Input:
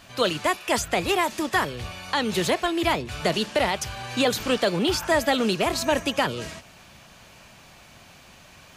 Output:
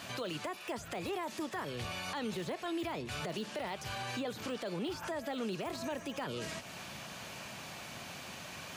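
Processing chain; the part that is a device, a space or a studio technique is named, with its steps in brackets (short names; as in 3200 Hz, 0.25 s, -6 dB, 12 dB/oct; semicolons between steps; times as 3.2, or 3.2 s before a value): podcast mastering chain (HPF 110 Hz 12 dB/oct; de-esser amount 80%; compressor 2.5:1, threshold -43 dBFS, peak gain reduction 15.5 dB; limiter -34 dBFS, peak gain reduction 8.5 dB; gain +4.5 dB; MP3 128 kbps 48000 Hz)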